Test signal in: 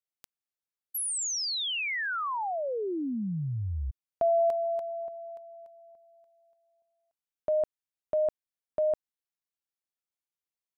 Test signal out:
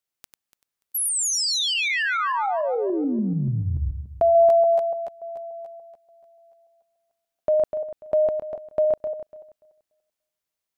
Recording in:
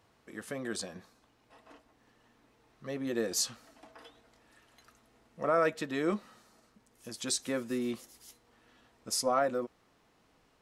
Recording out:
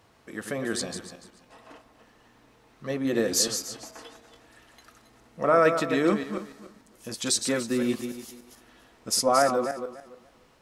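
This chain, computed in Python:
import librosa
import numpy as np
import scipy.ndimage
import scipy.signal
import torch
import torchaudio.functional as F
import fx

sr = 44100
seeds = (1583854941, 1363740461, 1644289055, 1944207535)

y = fx.reverse_delay_fb(x, sr, ms=145, feedback_pct=43, wet_db=-7.5)
y = y * 10.0 ** (7.0 / 20.0)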